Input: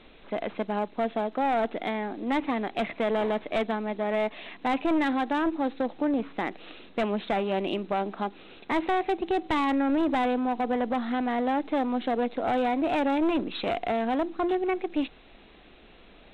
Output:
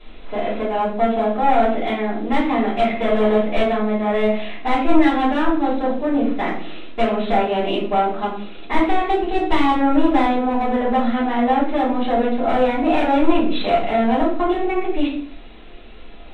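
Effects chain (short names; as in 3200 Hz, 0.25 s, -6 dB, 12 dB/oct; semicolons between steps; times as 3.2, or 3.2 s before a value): shoebox room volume 56 m³, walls mixed, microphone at 3.1 m; gain -5.5 dB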